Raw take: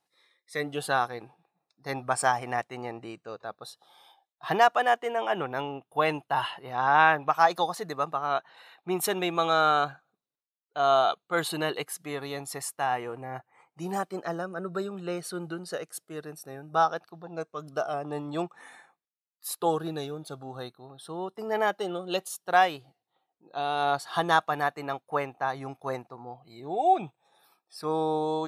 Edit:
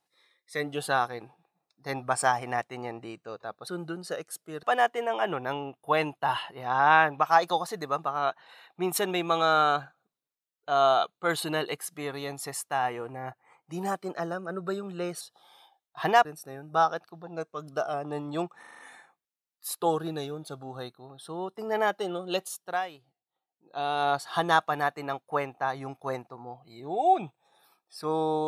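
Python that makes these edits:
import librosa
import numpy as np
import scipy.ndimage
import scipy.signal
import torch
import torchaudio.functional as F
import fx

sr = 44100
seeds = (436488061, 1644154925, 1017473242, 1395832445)

y = fx.edit(x, sr, fx.swap(start_s=3.67, length_s=1.04, other_s=15.29, other_length_s=0.96),
    fx.stutter(start_s=18.59, slice_s=0.04, count=6),
    fx.fade_down_up(start_s=22.29, length_s=1.35, db=-11.5, fade_s=0.33), tone=tone)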